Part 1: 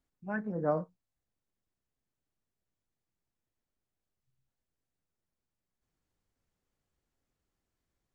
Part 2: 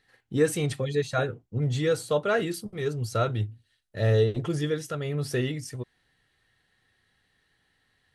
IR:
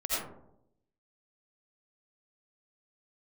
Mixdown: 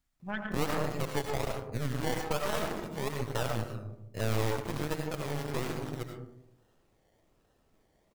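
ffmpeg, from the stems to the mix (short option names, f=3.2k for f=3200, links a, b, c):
-filter_complex "[0:a]equalizer=f=420:t=o:w=1.4:g=-12.5,volume=1dB,asplit=2[a][b];[b]volume=-4dB[c];[1:a]acrusher=samples=27:mix=1:aa=0.000001:lfo=1:lforange=16.2:lforate=1.2,adelay=200,volume=-5dB,asplit=2[d][e];[e]volume=-6.5dB[f];[2:a]atrim=start_sample=2205[g];[c][f]amix=inputs=2:normalize=0[h];[h][g]afir=irnorm=-1:irlink=0[i];[a][d][i]amix=inputs=3:normalize=0,aeval=exprs='0.316*(cos(1*acos(clip(val(0)/0.316,-1,1)))-cos(1*PI/2))+0.0891*(cos(6*acos(clip(val(0)/0.316,-1,1)))-cos(6*PI/2))':c=same,acompressor=threshold=-34dB:ratio=2"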